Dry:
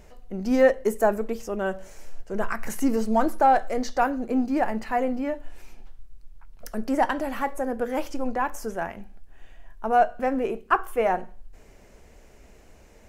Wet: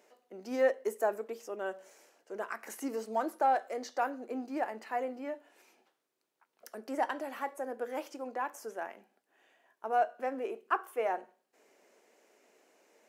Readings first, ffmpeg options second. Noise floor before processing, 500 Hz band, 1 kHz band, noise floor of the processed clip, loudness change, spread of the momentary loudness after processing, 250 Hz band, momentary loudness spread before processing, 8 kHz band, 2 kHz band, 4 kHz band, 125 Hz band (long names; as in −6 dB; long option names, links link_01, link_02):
−52 dBFS, −9.0 dB, −9.0 dB, −83 dBFS, −9.5 dB, 13 LU, −15.0 dB, 13 LU, −9.0 dB, −9.0 dB, −9.0 dB, below −20 dB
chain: -af "highpass=frequency=300:width=0.5412,highpass=frequency=300:width=1.3066,volume=-9dB"